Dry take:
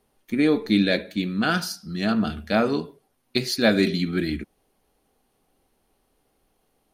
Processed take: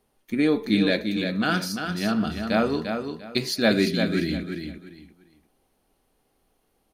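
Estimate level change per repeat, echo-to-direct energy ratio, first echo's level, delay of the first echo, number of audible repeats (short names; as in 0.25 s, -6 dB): -12.5 dB, -6.0 dB, -6.5 dB, 0.346 s, 3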